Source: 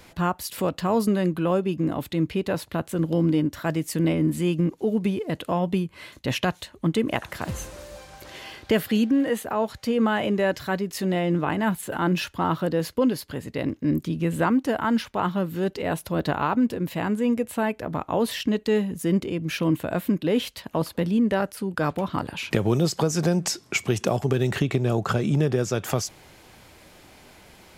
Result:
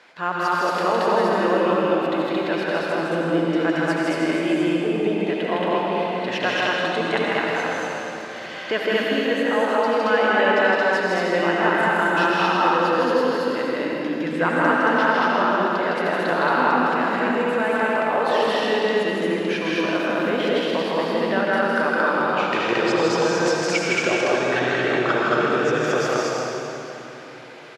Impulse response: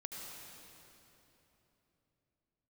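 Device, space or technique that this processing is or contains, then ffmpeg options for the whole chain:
station announcement: -filter_complex "[0:a]highpass=430,lowpass=4.3k,equalizer=f=1.6k:t=o:w=0.48:g=6,aecho=1:1:160.3|224.5:0.794|1[a];[1:a]atrim=start_sample=2205[b];[a][b]afir=irnorm=-1:irlink=0,asettb=1/sr,asplit=3[c][d][e];[c]atrim=end=24.594[f];[d]atrim=start=24.59:end=25.5,asetpts=PTS-STARTPTS,afade=t=in:d=0.004:c=qsin,afade=t=out:st=0.906:d=0.004:c=qsin,lowpass=8.2k[g];[e]atrim=start=25.496[h];[f][g]acrossfade=d=0.004:c1=hsin:c2=qsin[i];[i][h]acrossfade=d=0.004:c1=qsin:c2=hsin,volume=5.5dB"

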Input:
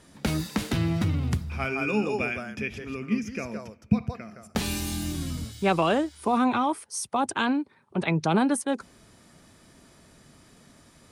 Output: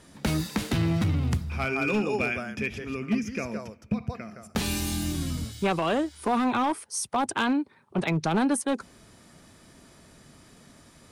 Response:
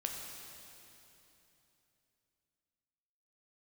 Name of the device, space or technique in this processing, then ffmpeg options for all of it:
limiter into clipper: -af "alimiter=limit=-15.5dB:level=0:latency=1:release=275,asoftclip=type=hard:threshold=-20.5dB,volume=1.5dB"

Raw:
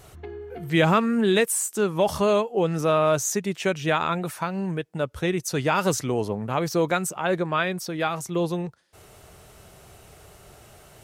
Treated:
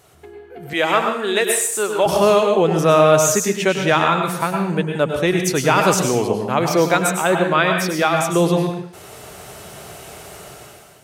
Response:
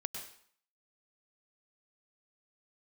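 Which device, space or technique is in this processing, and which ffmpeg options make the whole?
far laptop microphone: -filter_complex "[1:a]atrim=start_sample=2205[a];[0:a][a]afir=irnorm=-1:irlink=0,highpass=f=190:p=1,dynaudnorm=f=180:g=7:m=14dB,asettb=1/sr,asplit=3[b][c][d];[b]atrim=end=0.734[e];[c]atrim=start=0.73:end=2.06,asetpts=PTS-STARTPTS,afade=t=in:d=0.004:c=qsin,afade=t=out:st=1.326:d=0.004:c=qsin,highpass=420[f];[d]atrim=start=2.056[g];[e][f]acrossfade=d=0.004:c1=hsin:c2=qsin[h];[h][g]acrossfade=d=0.004:c1=qsin:c2=hsin"

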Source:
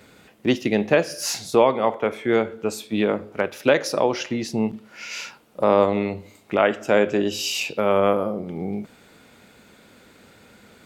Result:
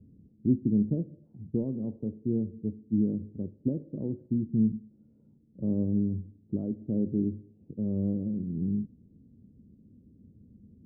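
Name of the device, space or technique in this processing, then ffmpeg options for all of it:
the neighbour's flat through the wall: -af "lowpass=f=260:w=0.5412,lowpass=f=260:w=1.3066,equalizer=f=87:t=o:w=0.98:g=4.5"

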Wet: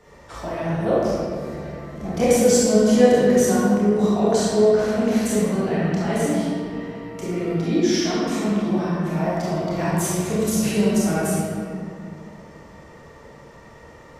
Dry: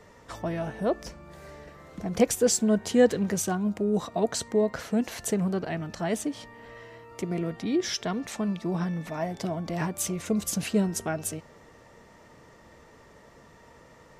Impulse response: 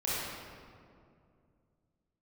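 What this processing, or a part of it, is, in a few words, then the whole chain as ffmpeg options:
stairwell: -filter_complex "[0:a]asettb=1/sr,asplit=3[a][b][c];[a]atrim=end=4.384[d];[b]atrim=start=4.38:end=5.16,asetpts=PTS-STARTPTS,afade=t=in:d=0.004:c=qsin,afade=t=out:st=0.776:d=0.004:c=qsin,lowpass=11k[e];[c]atrim=start=5.156[f];[d][e]acrossfade=d=0.004:c1=hsin:c2=qsin[g];[g][f]acrossfade=d=0.004:c1=qsin:c2=hsin[h];[1:a]atrim=start_sample=2205[i];[h][i]afir=irnorm=-1:irlink=0"

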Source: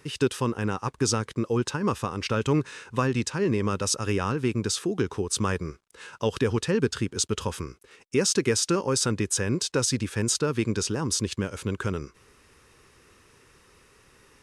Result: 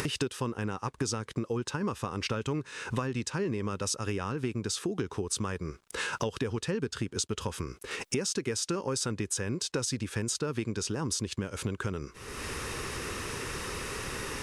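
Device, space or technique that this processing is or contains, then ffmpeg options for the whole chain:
upward and downward compression: -af "acompressor=mode=upward:threshold=-29dB:ratio=2.5,acompressor=threshold=-36dB:ratio=6,volume=6.5dB"

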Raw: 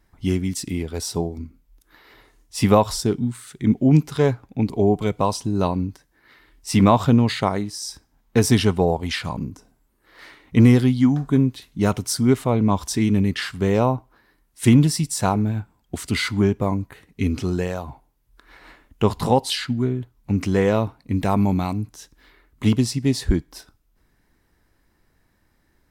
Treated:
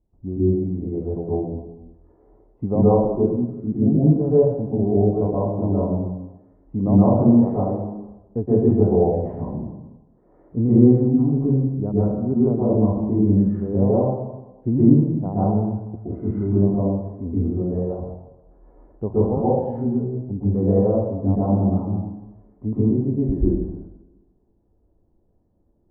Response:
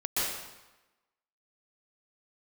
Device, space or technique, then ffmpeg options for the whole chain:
next room: -filter_complex "[0:a]lowpass=f=670:w=0.5412,lowpass=f=670:w=1.3066[a];[1:a]atrim=start_sample=2205[b];[a][b]afir=irnorm=-1:irlink=0,volume=-6.5dB"

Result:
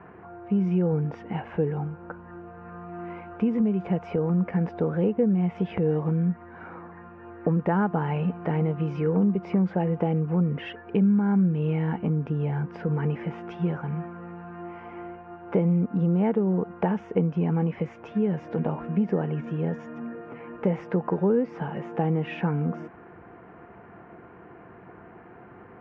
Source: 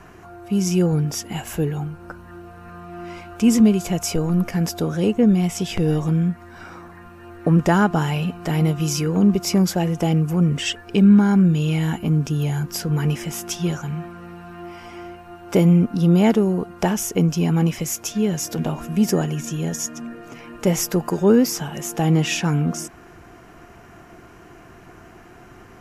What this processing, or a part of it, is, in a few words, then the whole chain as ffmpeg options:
bass amplifier: -af "acompressor=threshold=-20dB:ratio=4,highpass=85,equalizer=f=190:t=q:w=4:g=5,equalizer=f=480:t=q:w=4:g=8,equalizer=f=890:t=q:w=4:g=5,lowpass=f=2.2k:w=0.5412,lowpass=f=2.2k:w=1.3066,volume=-4dB"

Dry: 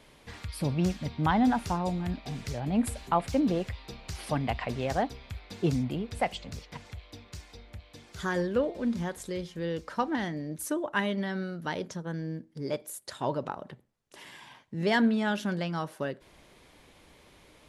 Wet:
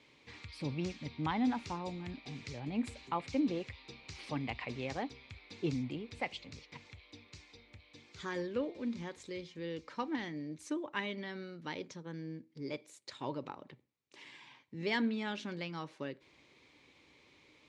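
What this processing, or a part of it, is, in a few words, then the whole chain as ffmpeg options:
car door speaker: -af "highpass=100,equalizer=f=190:t=q:w=4:g=-6,equalizer=f=290:t=q:w=4:g=4,equalizer=f=670:t=q:w=4:g=-8,equalizer=f=1.5k:t=q:w=4:g=-5,equalizer=f=2.3k:t=q:w=4:g=8,equalizer=f=4k:t=q:w=4:g=4,lowpass=f=7.1k:w=0.5412,lowpass=f=7.1k:w=1.3066,volume=-7.5dB"

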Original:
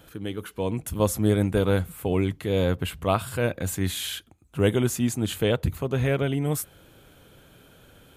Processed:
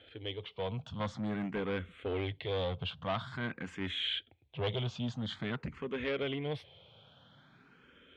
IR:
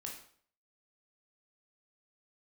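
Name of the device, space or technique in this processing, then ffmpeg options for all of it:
barber-pole phaser into a guitar amplifier: -filter_complex "[0:a]asplit=2[a][b];[b]afreqshift=0.48[c];[a][c]amix=inputs=2:normalize=1,asoftclip=type=tanh:threshold=-24.5dB,highpass=100,equalizer=f=180:t=q:w=4:g=-3,equalizer=f=320:t=q:w=4:g=-6,equalizer=f=2.1k:t=q:w=4:g=4,equalizer=f=3.3k:t=q:w=4:g=8,lowpass=f=4.1k:w=0.5412,lowpass=f=4.1k:w=1.3066,volume=-3.5dB"

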